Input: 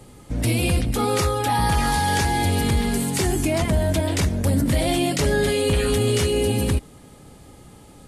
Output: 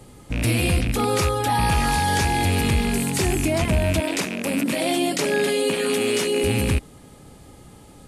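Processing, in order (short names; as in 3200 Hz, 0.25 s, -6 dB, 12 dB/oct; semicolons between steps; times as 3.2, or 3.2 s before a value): rattling part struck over -22 dBFS, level -18 dBFS; 4–6.44 HPF 200 Hz 24 dB/oct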